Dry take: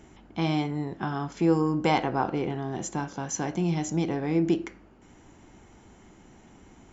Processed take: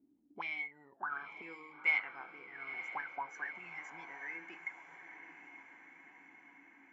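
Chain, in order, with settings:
noise reduction from a noise print of the clip's start 12 dB
envelope filter 270–2,200 Hz, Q 16, up, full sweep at −26 dBFS
feedback delay with all-pass diffusion 916 ms, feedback 58%, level −10 dB
level +7.5 dB

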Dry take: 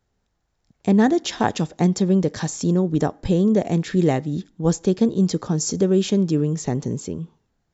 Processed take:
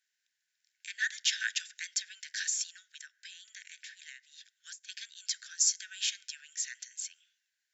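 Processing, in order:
Chebyshev high-pass filter 1,500 Hz, order 8
0:02.65–0:04.89: downward compressor 16 to 1, threshold −45 dBFS, peak gain reduction 18.5 dB

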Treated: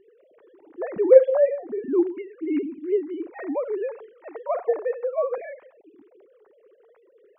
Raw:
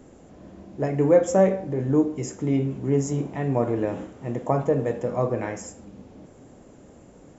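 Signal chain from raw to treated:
three sine waves on the formant tracks
0:04.12–0:05.38: low shelf with overshoot 390 Hz −11.5 dB, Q 1.5

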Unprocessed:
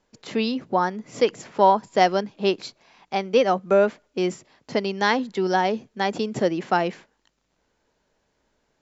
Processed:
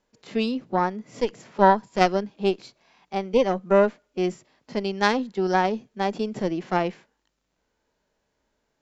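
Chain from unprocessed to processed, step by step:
harmonic generator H 2 −6 dB, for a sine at −3 dBFS
harmonic and percussive parts rebalanced harmonic +9 dB
level −10 dB

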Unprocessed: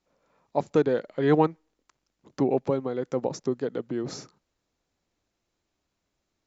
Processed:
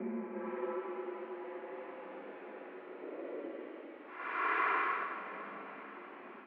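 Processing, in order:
extreme stretch with random phases 13×, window 0.10 s, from 0:01.54
automatic gain control gain up to 16 dB
on a send: feedback delay with all-pass diffusion 490 ms, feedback 54%, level −14 dB
on the sum: single-sideband voice off tune +51 Hz 180–2,400 Hz
level +15.5 dB

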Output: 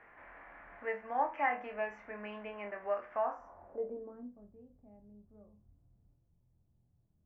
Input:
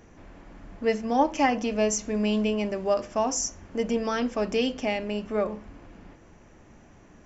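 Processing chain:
dynamic equaliser 3,100 Hz, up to −5 dB, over −44 dBFS, Q 0.71
low-pass filter sweep 2,000 Hz → 120 Hz, 0:03.15–0:04.50
in parallel at +2 dB: downward compressor, threshold −38 dBFS, peak gain reduction 20 dB
on the sum: three-way crossover with the lows and the highs turned down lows −20 dB, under 600 Hz, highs −23 dB, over 2,600 Hz
on a send: flutter between parallel walls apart 4.2 metres, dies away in 0.23 s
on the sum: level −8.5 dB

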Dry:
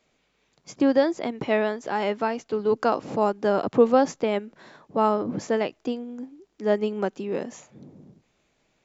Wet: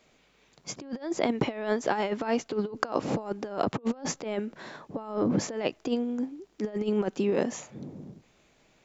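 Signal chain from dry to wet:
compressor whose output falls as the input rises −28 dBFS, ratio −0.5

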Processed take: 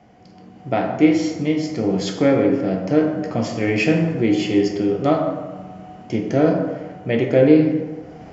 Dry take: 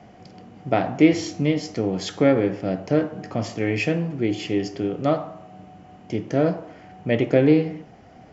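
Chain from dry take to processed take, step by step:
automatic gain control gain up to 12 dB
dense smooth reverb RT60 1.4 s, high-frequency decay 0.5×, DRR 2.5 dB
level −4.5 dB

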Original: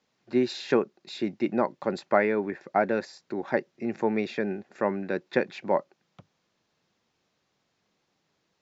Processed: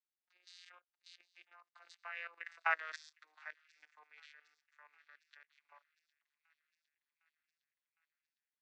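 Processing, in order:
vocoder with a gliding carrier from F3, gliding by −4 semitones
source passing by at 0:02.72, 13 m/s, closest 1.9 metres
high-pass filter 1,400 Hz 24 dB per octave
output level in coarse steps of 15 dB
high-shelf EQ 4,800 Hz +5 dB
delay with a high-pass on its return 758 ms, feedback 62%, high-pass 2,500 Hz, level −20 dB
level +14 dB

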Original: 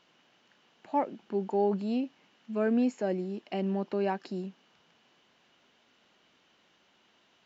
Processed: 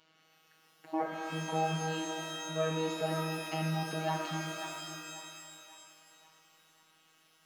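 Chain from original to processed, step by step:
phases set to zero 159 Hz
on a send: feedback echo with a band-pass in the loop 540 ms, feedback 48%, band-pass 1,300 Hz, level −9 dB
on the sum: reverb with rising layers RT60 2.2 s, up +12 semitones, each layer −2 dB, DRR 2 dB

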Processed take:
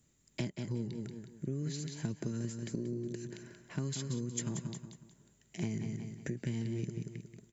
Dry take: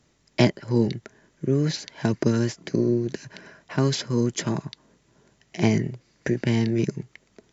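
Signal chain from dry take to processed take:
on a send: repeating echo 182 ms, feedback 35%, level −9 dB
on the sum: downward compressor 4 to 1, threshold −26 dBFS, peak gain reduction 12 dB
drawn EQ curve 190 Hz 0 dB, 710 Hz −10 dB, 3,500 Hz −4 dB, 5,600 Hz −6 dB, 7,900 Hz +12 dB
level −6 dB

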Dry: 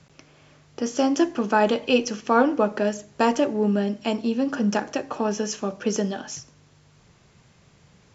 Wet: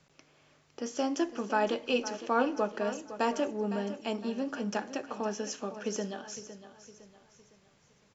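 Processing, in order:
parametric band 83 Hz −8 dB 2.5 octaves
on a send: repeating echo 509 ms, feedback 41%, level −13 dB
on the sum: level −8 dB

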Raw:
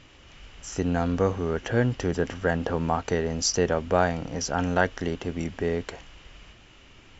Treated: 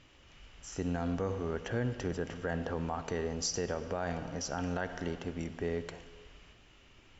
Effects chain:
convolution reverb RT60 1.7 s, pre-delay 44 ms, DRR 12.5 dB
brickwall limiter −14.5 dBFS, peak gain reduction 8 dB
level −8 dB

